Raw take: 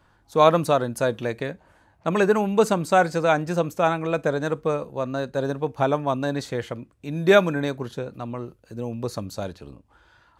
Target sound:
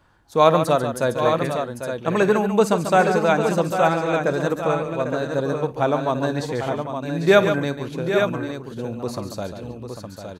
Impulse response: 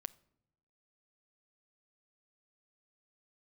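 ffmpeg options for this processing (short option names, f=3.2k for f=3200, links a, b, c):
-af "aecho=1:1:55|141|797|864:0.126|0.355|0.335|0.447,volume=1dB"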